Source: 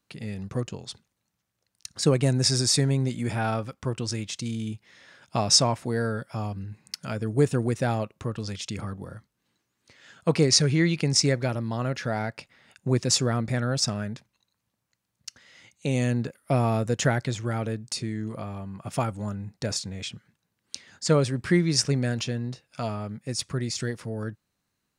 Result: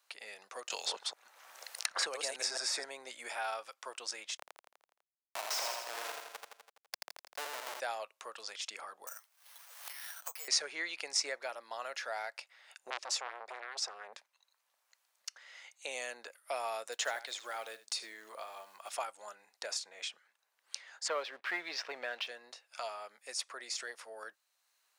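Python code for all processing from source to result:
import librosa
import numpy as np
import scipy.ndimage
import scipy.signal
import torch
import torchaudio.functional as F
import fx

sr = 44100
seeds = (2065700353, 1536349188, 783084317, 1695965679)

y = fx.chain(x, sr, fx.reverse_delay(ms=144, wet_db=-3.5),
    fx.band_squash(depth_pct=100), at=(0.7, 2.84))
y = fx.chain(y, sr, fx.schmitt(flips_db=-25.0),
    fx.echo_feedback(ms=83, feedback_pct=54, wet_db=-3.5), at=(4.37, 7.8))
y = fx.chain(y, sr, fx.highpass(hz=850.0, slope=12),
    fx.resample_bad(factor=6, down='none', up='zero_stuff'),
    fx.band_squash(depth_pct=100), at=(9.07, 10.48))
y = fx.chain(y, sr, fx.high_shelf(hz=8200.0, db=-12.0),
    fx.transformer_sat(knee_hz=1800.0), at=(12.9, 14.13))
y = fx.chain(y, sr, fx.peak_eq(hz=3800.0, db=5.5, octaves=0.42),
    fx.echo_single(ms=76, db=-15.5),
    fx.quant_float(bits=4), at=(16.92, 18.93))
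y = fx.chain(y, sr, fx.lowpass(hz=3600.0, slope=24),
    fx.leveller(passes=1), at=(21.08, 22.27))
y = scipy.signal.sosfilt(scipy.signal.butter(4, 630.0, 'highpass', fs=sr, output='sos'), y)
y = fx.band_squash(y, sr, depth_pct=40)
y = y * 10.0 ** (-6.0 / 20.0)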